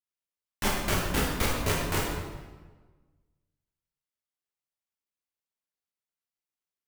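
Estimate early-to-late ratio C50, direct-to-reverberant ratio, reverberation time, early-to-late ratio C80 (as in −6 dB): 1.0 dB, −4.5 dB, 1.3 s, 3.0 dB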